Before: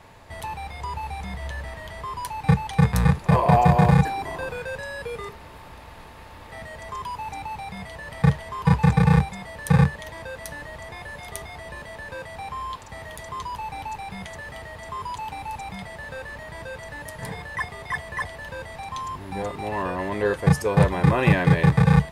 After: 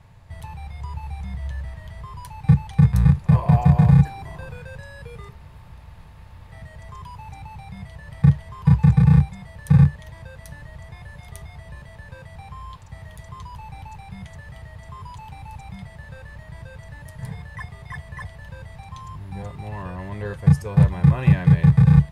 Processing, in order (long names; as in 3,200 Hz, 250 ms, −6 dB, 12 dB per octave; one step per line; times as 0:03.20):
low shelf with overshoot 200 Hz +11.5 dB, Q 1.5
level −8.5 dB